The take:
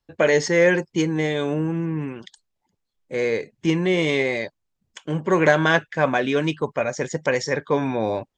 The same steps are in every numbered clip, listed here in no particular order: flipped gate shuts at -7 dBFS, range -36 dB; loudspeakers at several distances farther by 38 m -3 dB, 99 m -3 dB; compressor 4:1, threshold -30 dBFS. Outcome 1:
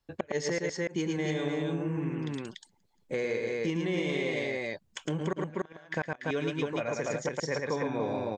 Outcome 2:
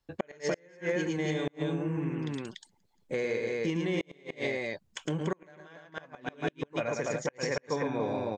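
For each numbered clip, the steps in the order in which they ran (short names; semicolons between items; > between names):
flipped gate > loudspeakers at several distances > compressor; loudspeakers at several distances > flipped gate > compressor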